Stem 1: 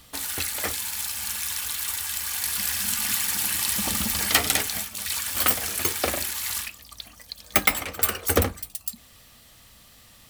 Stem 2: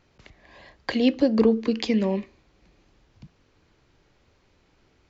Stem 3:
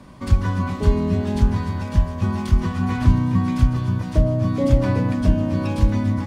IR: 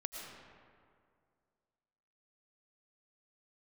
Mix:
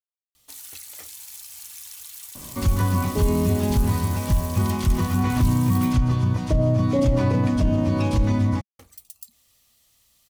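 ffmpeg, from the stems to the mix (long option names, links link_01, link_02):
-filter_complex "[0:a]highshelf=frequency=3300:gain=9,acompressor=threshold=-19dB:ratio=6,adelay=350,volume=-16.5dB,asplit=3[link_01][link_02][link_03];[link_01]atrim=end=5.93,asetpts=PTS-STARTPTS,afade=type=out:start_time=5.926:duration=0.004:curve=hsin[link_04];[link_02]atrim=start=5.93:end=8.79,asetpts=PTS-STARTPTS,volume=0[link_05];[link_03]atrim=start=8.79,asetpts=PTS-STARTPTS,afade=type=in:duration=0.004:curve=hsin[link_06];[link_04][link_05][link_06]concat=n=3:v=0:a=1[link_07];[2:a]alimiter=limit=-13.5dB:level=0:latency=1:release=24,adelay=2350,volume=2dB[link_08];[link_07][link_08]amix=inputs=2:normalize=0,equalizer=frequency=200:width_type=o:width=0.33:gain=-4,equalizer=frequency=1600:width_type=o:width=0.33:gain=-5,equalizer=frequency=6300:width_type=o:width=0.33:gain=3"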